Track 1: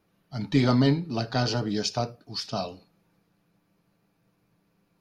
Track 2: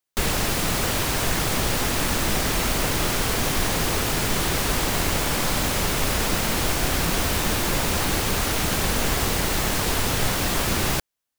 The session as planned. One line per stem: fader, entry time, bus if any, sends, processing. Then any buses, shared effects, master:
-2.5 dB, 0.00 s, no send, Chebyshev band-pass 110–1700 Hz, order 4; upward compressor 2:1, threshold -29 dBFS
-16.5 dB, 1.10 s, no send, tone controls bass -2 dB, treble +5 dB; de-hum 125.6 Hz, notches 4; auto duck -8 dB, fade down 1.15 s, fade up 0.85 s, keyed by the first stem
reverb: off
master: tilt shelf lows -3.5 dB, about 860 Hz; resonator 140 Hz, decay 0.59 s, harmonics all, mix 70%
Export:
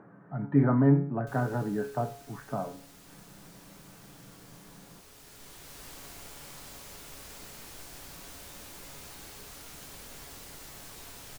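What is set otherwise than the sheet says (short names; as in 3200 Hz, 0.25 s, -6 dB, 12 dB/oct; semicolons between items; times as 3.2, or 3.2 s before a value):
stem 1 -2.5 dB -> +6.5 dB; master: missing tilt shelf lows -3.5 dB, about 860 Hz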